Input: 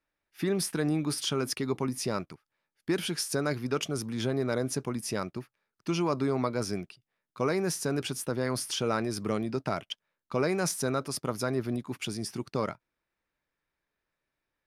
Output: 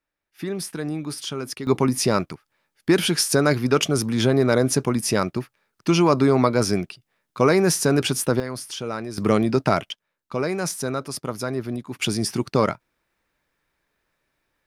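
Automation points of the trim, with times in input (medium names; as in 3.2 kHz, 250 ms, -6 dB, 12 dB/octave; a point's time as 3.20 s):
0 dB
from 1.67 s +11 dB
from 8.40 s -0.5 dB
from 9.18 s +11.5 dB
from 9.91 s +3 dB
from 11.99 s +11 dB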